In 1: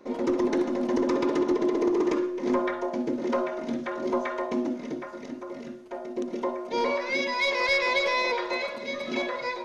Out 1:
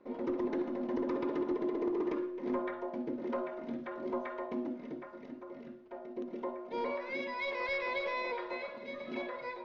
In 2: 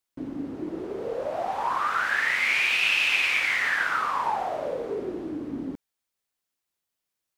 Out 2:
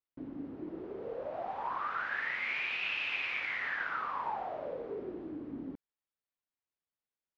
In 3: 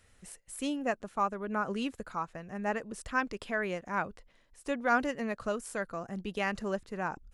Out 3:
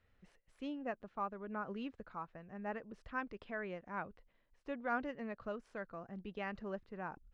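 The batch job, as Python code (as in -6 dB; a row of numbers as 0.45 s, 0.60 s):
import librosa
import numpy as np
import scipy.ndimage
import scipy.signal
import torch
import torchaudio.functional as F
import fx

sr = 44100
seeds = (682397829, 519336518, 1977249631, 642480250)

y = fx.air_absorb(x, sr, metres=260.0)
y = F.gain(torch.from_numpy(y), -8.5).numpy()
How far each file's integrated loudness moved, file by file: -9.5 LU, -11.0 LU, -9.5 LU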